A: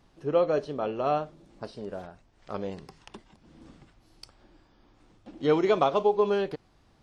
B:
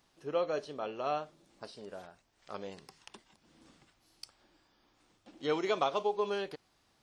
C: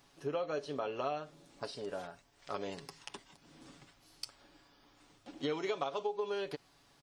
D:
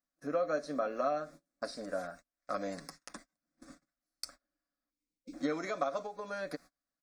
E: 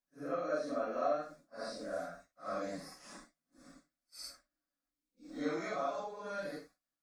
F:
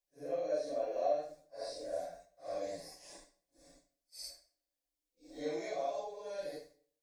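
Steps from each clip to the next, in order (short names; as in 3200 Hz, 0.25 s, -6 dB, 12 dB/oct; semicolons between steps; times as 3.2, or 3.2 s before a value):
tilt +2.5 dB/oct; gain -6 dB
comb 7.1 ms, depth 47%; compressor 5:1, threshold -38 dBFS, peak gain reduction 13.5 dB; gain +4.5 dB
fixed phaser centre 600 Hz, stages 8; gate -57 dBFS, range -31 dB; spectral gain 4.9–5.33, 530–2100 Hz -28 dB; gain +6 dB
phase scrambler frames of 0.2 s; gain -2 dB
fixed phaser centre 540 Hz, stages 4; reverb RT60 0.50 s, pre-delay 57 ms, DRR 14.5 dB; gain +1.5 dB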